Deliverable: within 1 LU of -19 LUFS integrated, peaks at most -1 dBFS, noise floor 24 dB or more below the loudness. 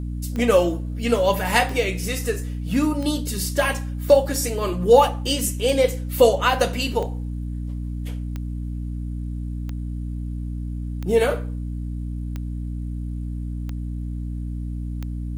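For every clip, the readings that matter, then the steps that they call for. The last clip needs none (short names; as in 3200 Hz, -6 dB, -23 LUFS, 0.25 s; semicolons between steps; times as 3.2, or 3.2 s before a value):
clicks 12; hum 60 Hz; harmonics up to 300 Hz; hum level -26 dBFS; loudness -23.5 LUFS; peak -3.0 dBFS; loudness target -19.0 LUFS
-> de-click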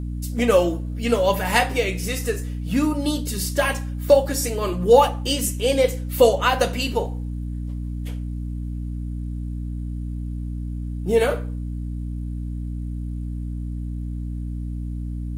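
clicks 0; hum 60 Hz; harmonics up to 300 Hz; hum level -26 dBFS
-> notches 60/120/180/240/300 Hz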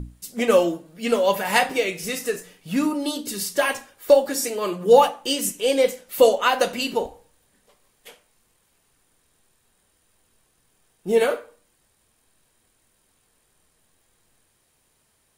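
hum none; loudness -21.5 LUFS; peak -2.5 dBFS; loudness target -19.0 LUFS
-> gain +2.5 dB; limiter -1 dBFS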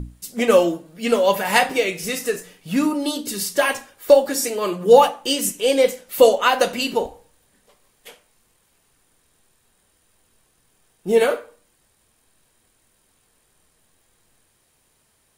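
loudness -19.0 LUFS; peak -1.0 dBFS; noise floor -64 dBFS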